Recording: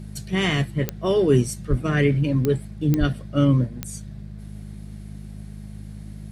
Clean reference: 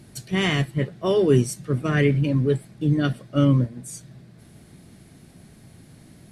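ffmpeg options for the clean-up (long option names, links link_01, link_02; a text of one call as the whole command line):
ffmpeg -i in.wav -filter_complex "[0:a]adeclick=threshold=4,bandreject=frequency=51.6:width_type=h:width=4,bandreject=frequency=103.2:width_type=h:width=4,bandreject=frequency=154.8:width_type=h:width=4,bandreject=frequency=206.4:width_type=h:width=4,asplit=3[link_01][link_02][link_03];[link_01]afade=type=out:start_time=1.69:duration=0.02[link_04];[link_02]highpass=frequency=140:width=0.5412,highpass=frequency=140:width=1.3066,afade=type=in:start_time=1.69:duration=0.02,afade=type=out:start_time=1.81:duration=0.02[link_05];[link_03]afade=type=in:start_time=1.81:duration=0.02[link_06];[link_04][link_05][link_06]amix=inputs=3:normalize=0,asplit=3[link_07][link_08][link_09];[link_07]afade=type=out:start_time=2.99:duration=0.02[link_10];[link_08]highpass=frequency=140:width=0.5412,highpass=frequency=140:width=1.3066,afade=type=in:start_time=2.99:duration=0.02,afade=type=out:start_time=3.11:duration=0.02[link_11];[link_09]afade=type=in:start_time=3.11:duration=0.02[link_12];[link_10][link_11][link_12]amix=inputs=3:normalize=0" out.wav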